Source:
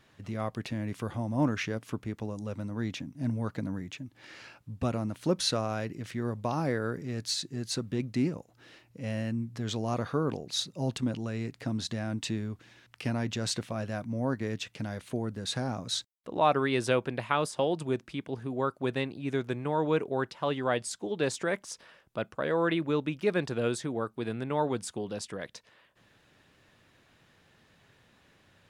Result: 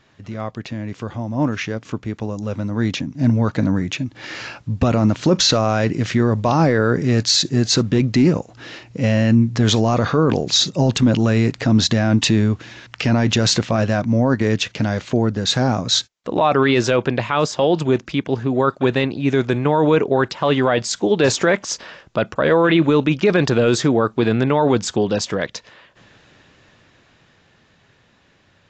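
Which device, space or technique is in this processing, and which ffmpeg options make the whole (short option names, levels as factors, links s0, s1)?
low-bitrate web radio: -af "dynaudnorm=f=200:g=31:m=5.62,alimiter=limit=0.251:level=0:latency=1:release=11,volume=2" -ar 16000 -c:a aac -b:a 48k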